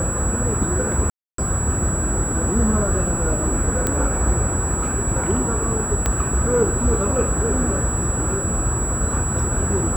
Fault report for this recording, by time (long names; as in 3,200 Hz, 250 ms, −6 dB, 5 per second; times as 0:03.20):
whistle 7,800 Hz −25 dBFS
0:01.10–0:01.38: drop-out 283 ms
0:03.87: click −6 dBFS
0:06.06: click −6 dBFS